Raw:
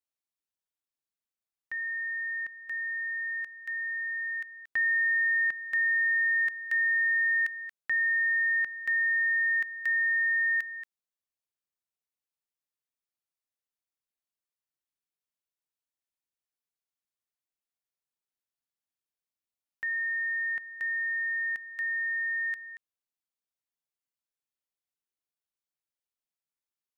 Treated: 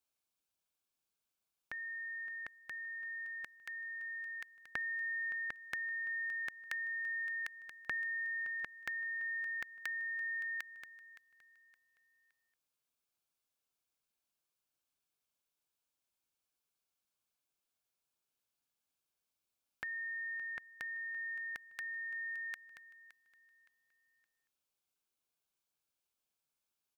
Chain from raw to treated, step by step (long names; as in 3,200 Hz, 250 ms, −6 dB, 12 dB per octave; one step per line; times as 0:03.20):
downward compressor 2 to 1, threshold −30 dBFS, peak gain reduction 3 dB
Butterworth band-reject 1,900 Hz, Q 6
on a send: repeating echo 567 ms, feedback 32%, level −16.5 dB
on the sum: level +4.5 dB